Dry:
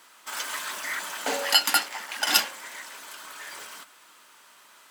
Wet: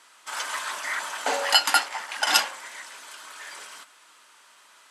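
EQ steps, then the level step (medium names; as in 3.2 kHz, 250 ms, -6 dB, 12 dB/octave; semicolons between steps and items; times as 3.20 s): bass shelf 280 Hz -9.5 dB; dynamic bell 870 Hz, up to +6 dB, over -42 dBFS, Q 0.78; low-pass 11 kHz 24 dB/octave; 0.0 dB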